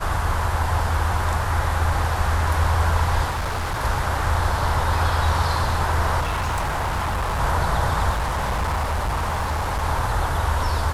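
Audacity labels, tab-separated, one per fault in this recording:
3.290000	3.820000	clipped -21.5 dBFS
6.200000	7.410000	clipped -20.5 dBFS
8.110000	9.840000	clipped -20 dBFS

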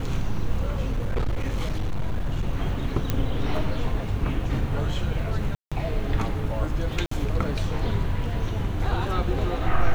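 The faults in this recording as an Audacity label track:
0.920000	2.460000	clipped -20.5 dBFS
3.100000	3.100000	pop -10 dBFS
5.550000	5.720000	gap 0.166 s
7.060000	7.110000	gap 54 ms

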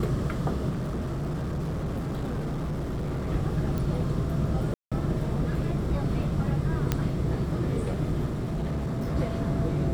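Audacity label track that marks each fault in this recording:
0.690000	3.290000	clipped -27 dBFS
3.780000	3.780000	pop
4.740000	4.920000	gap 0.176 s
6.920000	6.920000	pop -10 dBFS
8.250000	9.160000	clipped -25.5 dBFS

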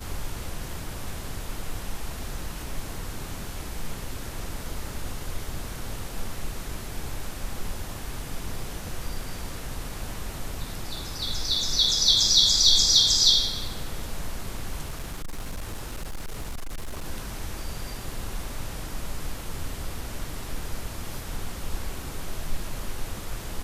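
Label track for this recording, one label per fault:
14.890000	17.060000	clipped -28.5 dBFS

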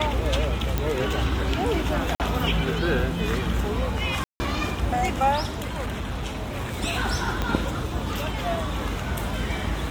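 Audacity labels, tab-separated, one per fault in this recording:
0.780000	0.780000	pop -10 dBFS
2.150000	2.200000	gap 48 ms
4.240000	4.400000	gap 0.16 s
5.580000	6.760000	clipped -24.5 dBFS
7.420000	7.420000	pop -12 dBFS

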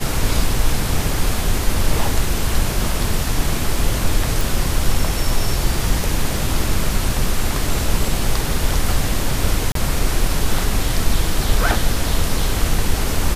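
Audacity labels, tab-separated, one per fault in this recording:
4.410000	4.410000	pop
9.720000	9.750000	gap 33 ms

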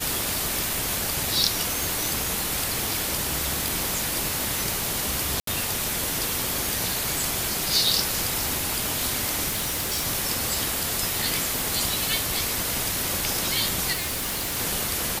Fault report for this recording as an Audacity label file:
1.830000	1.830000	pop
3.680000	3.680000	pop
5.400000	5.470000	gap 73 ms
9.480000	10.070000	clipped -23 dBFS
11.590000	11.590000	pop
13.920000	14.570000	clipped -25 dBFS

